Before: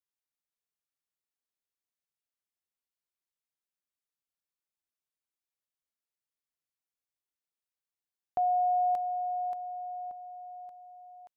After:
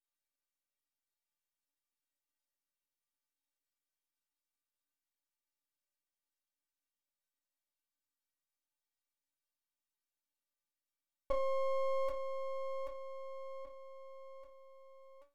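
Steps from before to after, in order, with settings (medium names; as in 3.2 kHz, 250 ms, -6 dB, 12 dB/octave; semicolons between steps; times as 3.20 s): speed mistake 45 rpm record played at 33 rpm; inharmonic resonator 280 Hz, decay 0.28 s, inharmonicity 0.008; half-wave rectifier; trim +14.5 dB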